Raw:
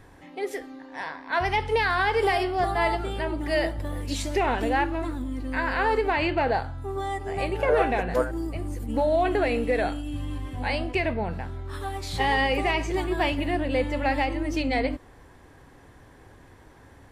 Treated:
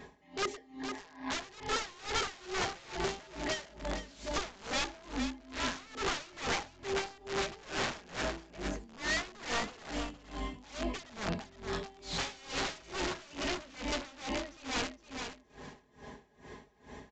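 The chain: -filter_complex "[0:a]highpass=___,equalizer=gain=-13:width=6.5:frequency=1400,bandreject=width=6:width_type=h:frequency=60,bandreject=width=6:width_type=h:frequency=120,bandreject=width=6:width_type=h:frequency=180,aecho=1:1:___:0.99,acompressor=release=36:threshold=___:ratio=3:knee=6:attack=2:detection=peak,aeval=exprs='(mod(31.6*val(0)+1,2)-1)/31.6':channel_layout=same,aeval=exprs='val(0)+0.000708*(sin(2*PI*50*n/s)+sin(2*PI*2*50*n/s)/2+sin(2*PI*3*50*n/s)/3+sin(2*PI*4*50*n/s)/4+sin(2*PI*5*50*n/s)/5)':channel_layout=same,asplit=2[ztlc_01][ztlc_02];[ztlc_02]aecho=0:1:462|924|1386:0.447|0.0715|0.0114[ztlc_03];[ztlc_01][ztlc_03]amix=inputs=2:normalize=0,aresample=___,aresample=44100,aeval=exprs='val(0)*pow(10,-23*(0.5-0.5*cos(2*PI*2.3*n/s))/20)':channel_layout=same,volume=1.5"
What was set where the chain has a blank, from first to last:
79, 4.8, 0.0158, 16000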